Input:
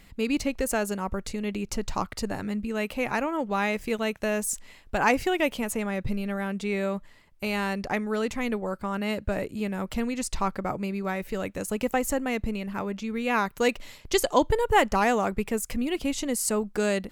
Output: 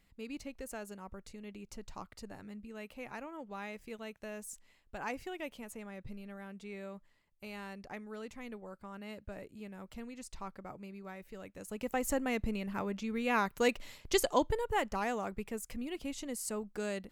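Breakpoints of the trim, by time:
11.51 s -17 dB
12.12 s -5.5 dB
14.20 s -5.5 dB
14.76 s -12 dB

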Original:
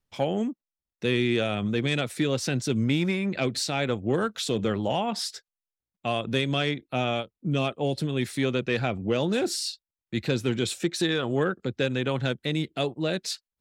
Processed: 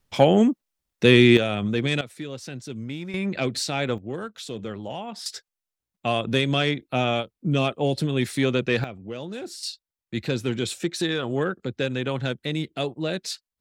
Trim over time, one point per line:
+10 dB
from 1.37 s +2 dB
from 2.01 s -9 dB
from 3.14 s +1 dB
from 3.98 s -7 dB
from 5.26 s +3.5 dB
from 8.84 s -9 dB
from 9.63 s 0 dB

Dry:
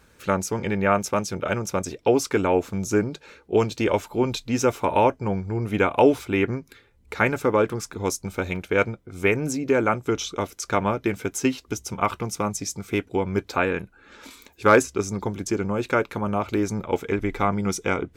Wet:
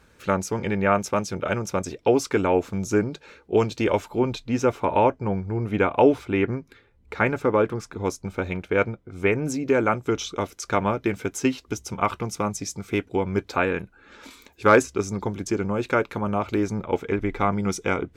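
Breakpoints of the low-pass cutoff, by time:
low-pass 6 dB/octave
6.5 kHz
from 4.19 s 2.6 kHz
from 9.47 s 6.9 kHz
from 16.67 s 3.4 kHz
from 17.41 s 6.8 kHz

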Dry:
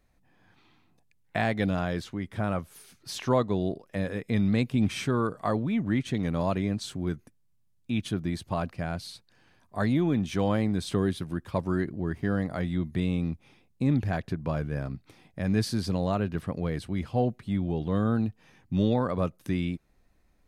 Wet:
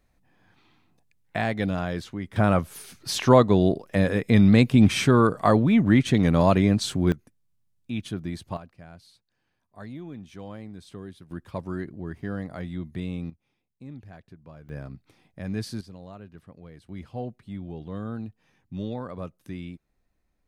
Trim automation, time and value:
+0.5 dB
from 2.36 s +8.5 dB
from 7.12 s -2 dB
from 8.57 s -14 dB
from 11.31 s -4.5 dB
from 13.30 s -17 dB
from 14.69 s -5 dB
from 15.81 s -16 dB
from 16.89 s -8 dB

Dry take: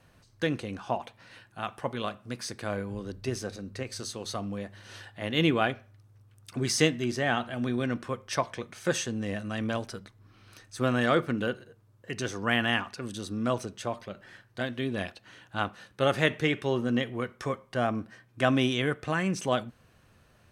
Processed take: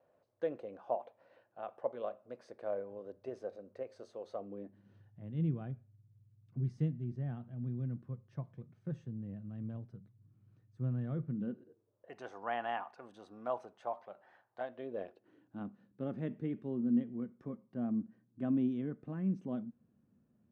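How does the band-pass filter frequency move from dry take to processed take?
band-pass filter, Q 3.5
4.34 s 570 Hz
5.02 s 140 Hz
11.27 s 140 Hz
12.17 s 780 Hz
14.60 s 780 Hz
15.67 s 220 Hz

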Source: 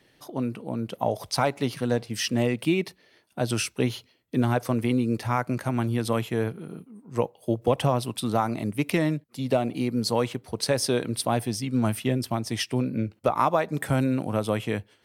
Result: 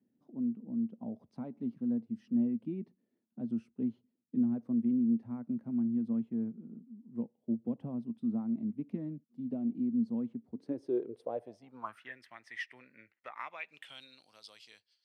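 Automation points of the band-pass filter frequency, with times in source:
band-pass filter, Q 7.8
10.46 s 230 Hz
11.57 s 630 Hz
12.15 s 1.9 kHz
13.39 s 1.9 kHz
14.30 s 4.7 kHz

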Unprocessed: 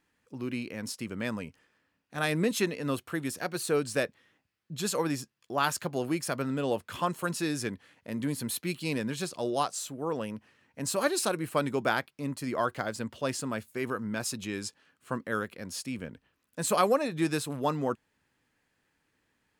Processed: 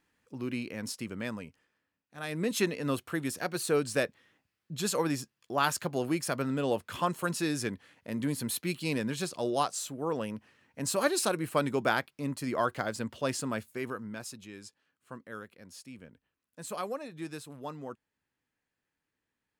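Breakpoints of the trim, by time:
0.96 s -0.5 dB
2.17 s -11 dB
2.59 s 0 dB
13.58 s 0 dB
14.47 s -11.5 dB

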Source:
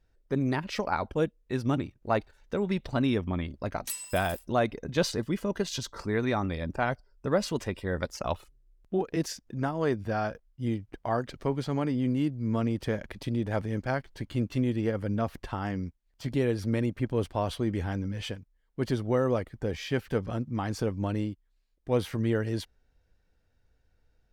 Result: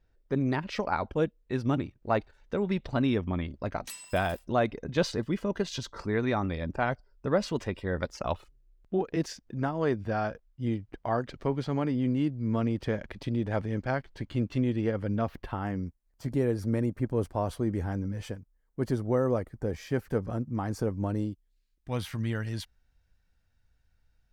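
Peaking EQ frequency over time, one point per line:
peaking EQ -11.5 dB 1.3 oct
15.15 s 13 kHz
15.84 s 3.2 kHz
21.10 s 3.2 kHz
21.90 s 420 Hz

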